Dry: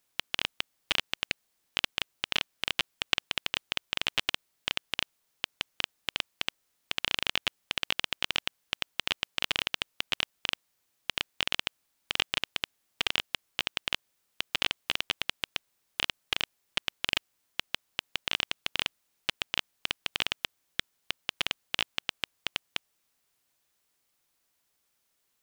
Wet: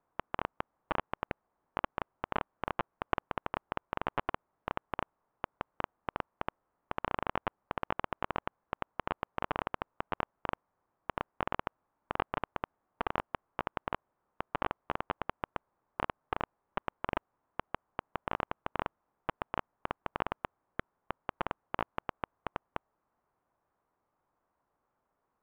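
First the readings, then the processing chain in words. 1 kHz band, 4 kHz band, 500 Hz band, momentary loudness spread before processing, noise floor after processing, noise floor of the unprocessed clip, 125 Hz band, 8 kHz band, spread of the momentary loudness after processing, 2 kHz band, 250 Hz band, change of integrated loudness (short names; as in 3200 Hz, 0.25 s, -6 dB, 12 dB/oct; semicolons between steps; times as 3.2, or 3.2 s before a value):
+6.5 dB, -22.0 dB, +5.5 dB, 6 LU, -83 dBFS, -76 dBFS, +4.0 dB, under -35 dB, 6 LU, -9.0 dB, +4.5 dB, -7.5 dB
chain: ladder low-pass 1300 Hz, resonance 35%; gain +11.5 dB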